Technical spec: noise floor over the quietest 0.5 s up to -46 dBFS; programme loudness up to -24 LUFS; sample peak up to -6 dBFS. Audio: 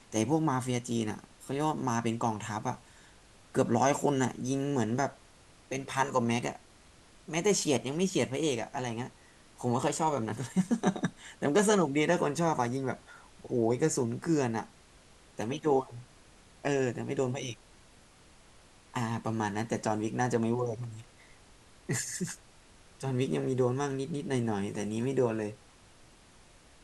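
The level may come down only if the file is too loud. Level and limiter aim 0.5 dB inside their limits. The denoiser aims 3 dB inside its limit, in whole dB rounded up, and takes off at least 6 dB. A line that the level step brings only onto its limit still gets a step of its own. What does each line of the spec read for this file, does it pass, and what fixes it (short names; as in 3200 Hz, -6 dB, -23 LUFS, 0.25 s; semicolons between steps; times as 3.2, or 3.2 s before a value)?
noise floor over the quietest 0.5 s -58 dBFS: OK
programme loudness -31.5 LUFS: OK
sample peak -12.0 dBFS: OK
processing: none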